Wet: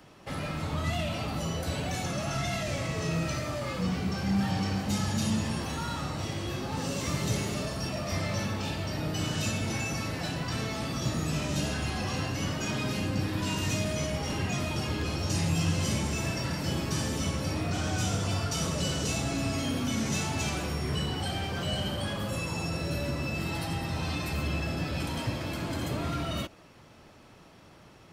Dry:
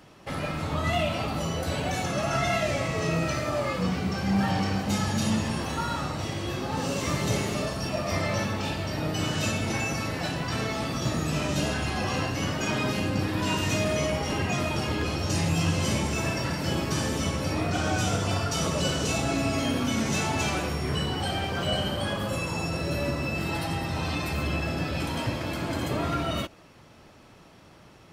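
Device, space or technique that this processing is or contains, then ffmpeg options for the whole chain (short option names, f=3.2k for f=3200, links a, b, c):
one-band saturation: -filter_complex "[0:a]acrossover=split=250|3300[a][b][c];[b]asoftclip=type=tanh:threshold=-32dB[d];[a][d][c]amix=inputs=3:normalize=0,volume=-1.5dB"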